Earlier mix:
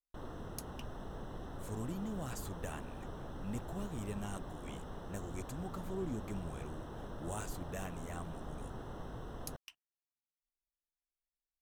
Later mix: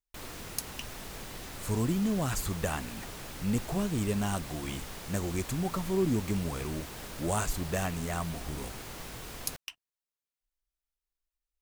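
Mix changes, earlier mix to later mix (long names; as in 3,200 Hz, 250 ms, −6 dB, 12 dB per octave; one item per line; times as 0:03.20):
speech +12.0 dB
background: remove moving average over 19 samples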